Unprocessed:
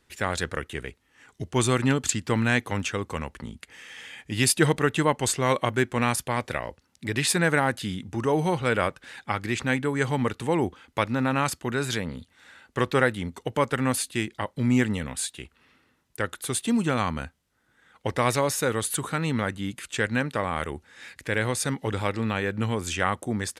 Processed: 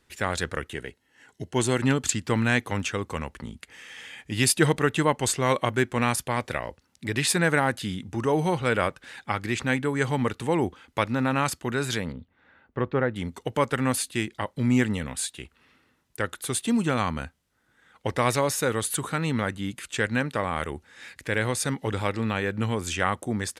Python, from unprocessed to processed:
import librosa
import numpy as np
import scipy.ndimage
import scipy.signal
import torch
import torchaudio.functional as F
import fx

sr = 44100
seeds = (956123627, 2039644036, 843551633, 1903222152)

y = fx.notch_comb(x, sr, f0_hz=1200.0, at=(0.75, 1.82))
y = fx.spacing_loss(y, sr, db_at_10k=45, at=(12.12, 13.16))